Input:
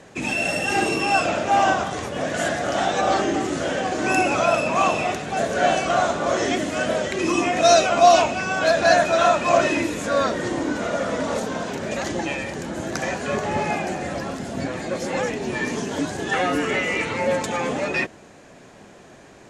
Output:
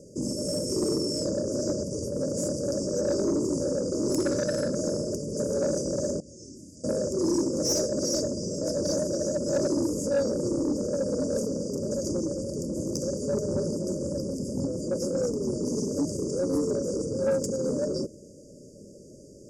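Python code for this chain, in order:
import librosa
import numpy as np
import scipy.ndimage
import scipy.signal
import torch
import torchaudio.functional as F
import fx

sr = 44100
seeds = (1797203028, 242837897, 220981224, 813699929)

y = fx.brickwall_bandstop(x, sr, low_hz=620.0, high_hz=4600.0)
y = fx.tone_stack(y, sr, knobs='6-0-2', at=(6.2, 6.84))
y = 10.0 ** (-18.5 / 20.0) * np.tanh(y / 10.0 ** (-18.5 / 20.0))
y = fx.band_shelf(y, sr, hz=2300.0, db=12.5, octaves=1.7, at=(4.2, 4.76))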